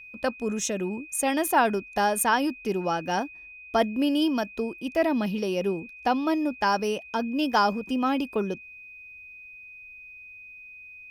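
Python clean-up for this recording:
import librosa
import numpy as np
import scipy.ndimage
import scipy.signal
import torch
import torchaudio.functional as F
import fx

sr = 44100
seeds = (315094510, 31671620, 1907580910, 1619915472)

y = fx.notch(x, sr, hz=2500.0, q=30.0)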